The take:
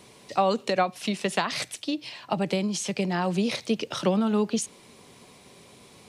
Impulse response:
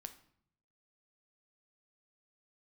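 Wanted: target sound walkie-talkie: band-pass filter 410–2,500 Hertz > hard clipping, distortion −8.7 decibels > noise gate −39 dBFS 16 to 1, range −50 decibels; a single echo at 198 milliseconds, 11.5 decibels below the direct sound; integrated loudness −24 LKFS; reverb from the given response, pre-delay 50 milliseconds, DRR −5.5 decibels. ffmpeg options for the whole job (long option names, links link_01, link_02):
-filter_complex "[0:a]aecho=1:1:198:0.266,asplit=2[link_01][link_02];[1:a]atrim=start_sample=2205,adelay=50[link_03];[link_02][link_03]afir=irnorm=-1:irlink=0,volume=10.5dB[link_04];[link_01][link_04]amix=inputs=2:normalize=0,highpass=410,lowpass=2500,asoftclip=type=hard:threshold=-20dB,agate=range=-50dB:threshold=-39dB:ratio=16,volume=2.5dB"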